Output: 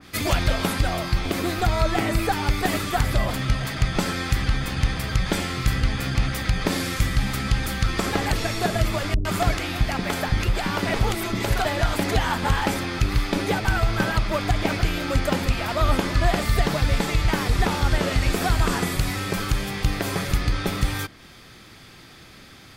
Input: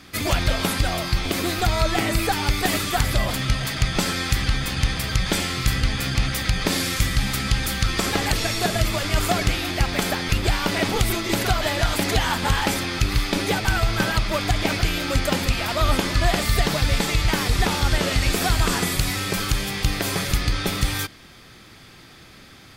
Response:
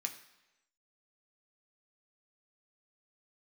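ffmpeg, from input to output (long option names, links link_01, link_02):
-filter_complex "[0:a]asettb=1/sr,asplit=3[link_01][link_02][link_03];[link_01]atrim=end=9.144[link_04];[link_02]atrim=start=9.14:end=11.65,asetpts=PTS-STARTPTS,afade=type=in:duration=0.004:curve=qsin,afade=type=out:start_time=2.506:duration=0.004:curve=qsin,acrossover=split=370[link_05][link_06];[link_06]adelay=110[link_07];[link_05][link_07]amix=inputs=2:normalize=0,atrim=end_sample=110691[link_08];[link_03]atrim=start=11.646[link_09];[link_04][link_08]acrossfade=duration=0.004:curve1=hsin:curve2=qsin[link_10];[link_10][link_09]acrossfade=duration=0.004:curve1=qsin:curve2=hsin,adynamicequalizer=threshold=0.0112:dfrequency=2200:dqfactor=0.7:tfrequency=2200:tqfactor=0.7:attack=5:release=100:ratio=0.375:range=3:mode=cutabove:tftype=highshelf"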